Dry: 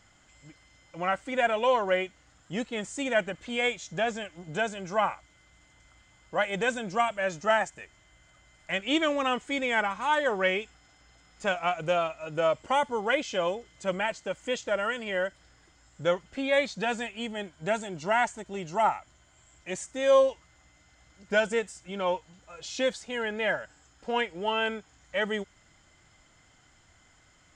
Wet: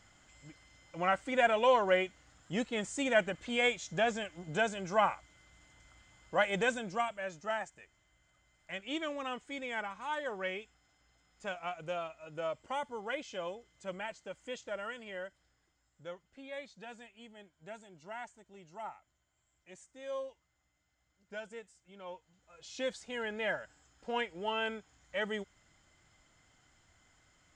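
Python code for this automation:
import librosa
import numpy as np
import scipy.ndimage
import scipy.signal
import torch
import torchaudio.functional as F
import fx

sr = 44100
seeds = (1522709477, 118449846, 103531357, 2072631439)

y = fx.gain(x, sr, db=fx.line((6.56, -2.0), (7.33, -11.5), (14.92, -11.5), (16.08, -19.0), (22.0, -19.0), (23.03, -6.5)))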